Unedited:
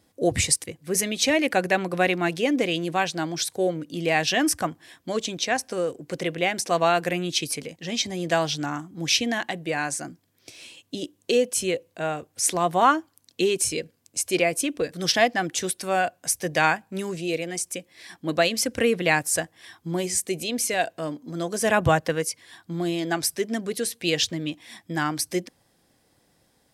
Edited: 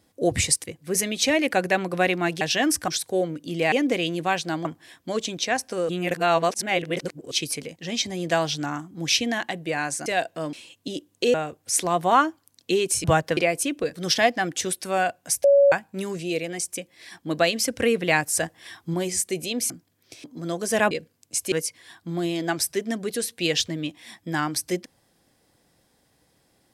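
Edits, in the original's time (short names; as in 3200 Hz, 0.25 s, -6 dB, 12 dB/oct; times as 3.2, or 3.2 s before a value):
2.41–3.34 swap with 4.18–4.65
5.89–7.31 reverse
10.06–10.6 swap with 20.68–21.15
11.41–12.04 cut
13.74–14.35 swap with 21.82–22.15
16.42–16.7 bleep 562 Hz -12 dBFS
19.41–19.92 gain +3.5 dB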